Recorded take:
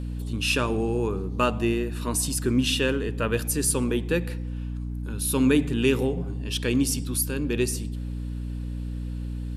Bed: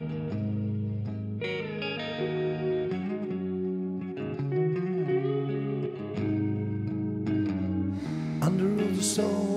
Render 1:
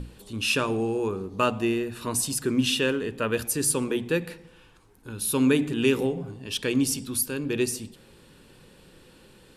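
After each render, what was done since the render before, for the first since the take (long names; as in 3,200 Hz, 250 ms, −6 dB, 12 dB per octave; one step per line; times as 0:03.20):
mains-hum notches 60/120/180/240/300 Hz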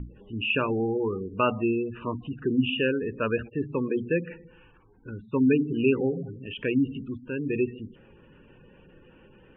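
gate on every frequency bin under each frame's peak −20 dB strong
Butterworth low-pass 3,000 Hz 96 dB per octave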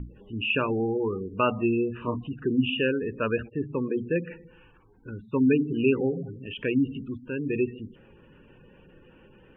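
0:01.56–0:02.24: double-tracking delay 25 ms −6 dB
0:03.46–0:04.16: high-frequency loss of the air 390 metres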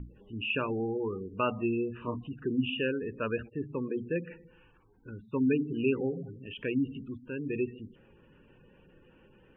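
level −5.5 dB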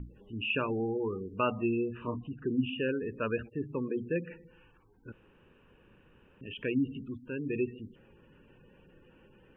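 0:02.07–0:02.89: high-frequency loss of the air 290 metres
0:05.12–0:06.41: fill with room tone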